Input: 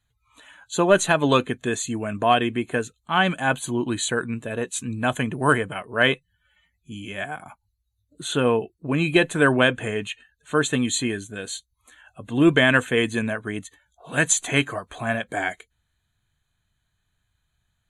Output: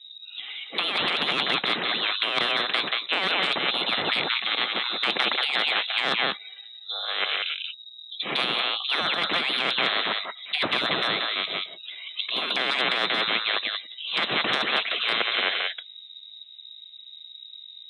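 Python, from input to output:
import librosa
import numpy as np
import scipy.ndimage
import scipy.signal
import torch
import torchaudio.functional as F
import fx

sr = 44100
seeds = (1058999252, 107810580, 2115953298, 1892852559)

y = x + 10.0 ** (-8.0 / 20.0) * np.pad(x, (int(182 * sr / 1000.0), 0))[:len(x)]
y = fx.env_lowpass(y, sr, base_hz=480.0, full_db=-16.5)
y = fx.freq_invert(y, sr, carrier_hz=3800)
y = fx.over_compress(y, sr, threshold_db=-23.0, ratio=-1.0)
y = scipy.signal.sosfilt(scipy.signal.butter(4, 220.0, 'highpass', fs=sr, output='sos'), y)
y = fx.spectral_comp(y, sr, ratio=4.0)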